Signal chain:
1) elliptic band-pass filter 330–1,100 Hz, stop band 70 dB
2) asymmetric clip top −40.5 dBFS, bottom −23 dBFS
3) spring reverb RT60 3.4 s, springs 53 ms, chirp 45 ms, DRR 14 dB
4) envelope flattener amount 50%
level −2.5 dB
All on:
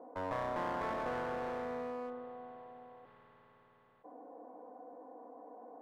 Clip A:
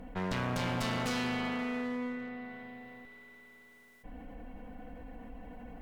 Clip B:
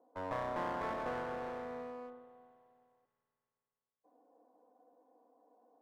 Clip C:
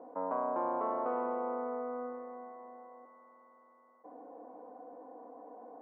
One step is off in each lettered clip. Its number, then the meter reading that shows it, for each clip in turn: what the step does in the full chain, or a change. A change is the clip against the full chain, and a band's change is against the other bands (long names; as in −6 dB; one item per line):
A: 1, 500 Hz band −12.0 dB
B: 4, change in momentary loudness spread −6 LU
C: 2, distortion level −7 dB